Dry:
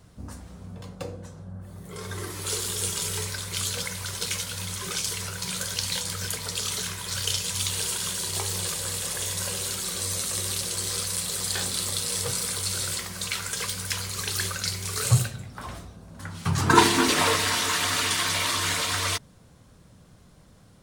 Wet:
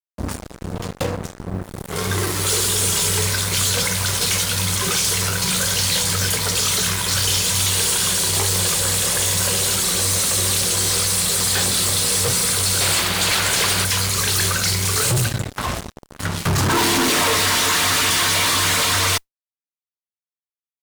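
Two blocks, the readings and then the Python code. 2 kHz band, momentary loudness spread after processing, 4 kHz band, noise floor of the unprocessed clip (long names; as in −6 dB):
+8.0 dB, 11 LU, +9.0 dB, −53 dBFS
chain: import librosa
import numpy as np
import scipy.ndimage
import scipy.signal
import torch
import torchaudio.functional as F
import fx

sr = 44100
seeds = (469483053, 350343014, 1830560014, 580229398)

y = fx.fuzz(x, sr, gain_db=37.0, gate_db=-39.0)
y = fx.spec_paint(y, sr, seeds[0], shape='noise', start_s=12.8, length_s=1.05, low_hz=290.0, high_hz=4800.0, level_db=-21.0)
y = fx.mod_noise(y, sr, seeds[1], snr_db=34)
y = y * 10.0 ** (-3.0 / 20.0)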